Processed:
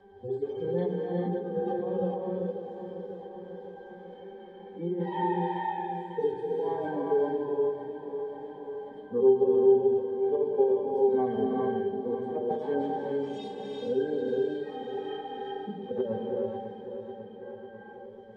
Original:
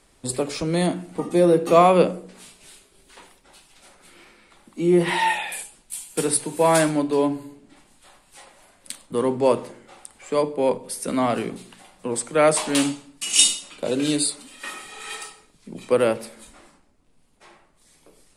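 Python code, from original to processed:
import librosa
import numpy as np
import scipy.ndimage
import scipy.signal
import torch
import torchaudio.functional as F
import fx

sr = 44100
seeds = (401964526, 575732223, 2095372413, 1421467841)

y = fx.hpss_only(x, sr, part='harmonic')
y = scipy.signal.sosfilt(scipy.signal.butter(2, 6300.0, 'lowpass', fs=sr, output='sos'), y)
y = fx.peak_eq(y, sr, hz=550.0, db=11.0, octaves=1.5)
y = fx.hum_notches(y, sr, base_hz=60, count=3)
y = fx.over_compress(y, sr, threshold_db=-12.0, ratio=-0.5)
y = fx.octave_resonator(y, sr, note='G', decay_s=0.13)
y = fx.echo_feedback(y, sr, ms=546, feedback_pct=55, wet_db=-12.0)
y = fx.rev_gated(y, sr, seeds[0], gate_ms=460, shape='rising', drr_db=-1.0)
y = fx.band_squash(y, sr, depth_pct=40)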